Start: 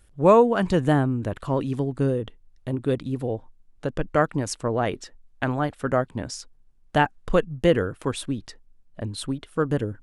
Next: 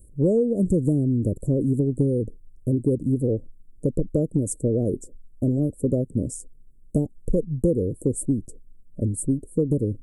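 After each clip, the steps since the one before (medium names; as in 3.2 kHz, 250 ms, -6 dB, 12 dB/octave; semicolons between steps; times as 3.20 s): Chebyshev band-stop 580–7900 Hz, order 4; high-order bell 1.2 kHz -11 dB 2.3 oct; compression 6:1, threshold -26 dBFS, peak gain reduction 11 dB; trim +8.5 dB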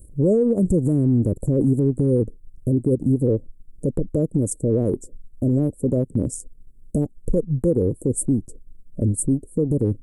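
peak limiter -17 dBFS, peak gain reduction 8 dB; transient shaper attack -1 dB, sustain -6 dB; trim +6 dB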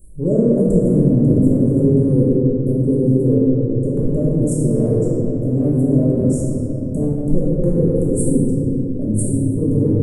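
simulated room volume 220 m³, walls hard, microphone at 1.2 m; trim -4.5 dB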